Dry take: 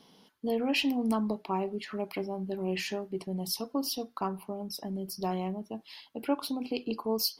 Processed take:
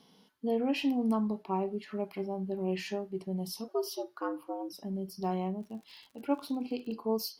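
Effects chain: 3.68–4.73 s: frequency shift +120 Hz; harmonic-percussive split percussive -10 dB; 5.60–6.93 s: crackle 110 per s -> 36 per s -46 dBFS

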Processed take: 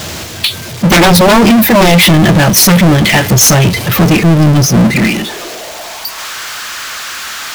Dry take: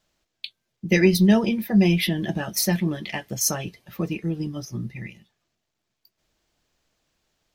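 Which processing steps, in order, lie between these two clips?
high-pass sweep 92 Hz -> 1.3 kHz, 4.28–6.36 s; sine folder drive 10 dB, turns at -8 dBFS; power-law waveshaper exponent 0.35; trim +3 dB

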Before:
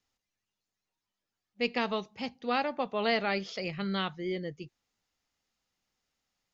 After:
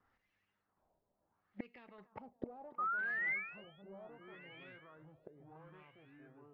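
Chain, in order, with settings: peaking EQ 2.8 kHz -3 dB 1.1 oct; band-stop 2.4 kHz, Q 23; in parallel at +3 dB: peak limiter -27 dBFS, peak gain reduction 10.5 dB; 1.98–2.69 s: on the sum: waveshaping leveller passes 2; one-sided clip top -22.5 dBFS, bottom -18.5 dBFS; ever faster or slower copies 767 ms, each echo -4 st, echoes 2; inverted gate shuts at -27 dBFS, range -31 dB; 2.78–3.82 s: painted sound rise 1.2–3.5 kHz -42 dBFS; on a send: thinning echo 285 ms, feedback 73%, high-pass 350 Hz, level -16 dB; on the sum: LFO low-pass sine 0.71 Hz 620–2400 Hz; trim -1 dB

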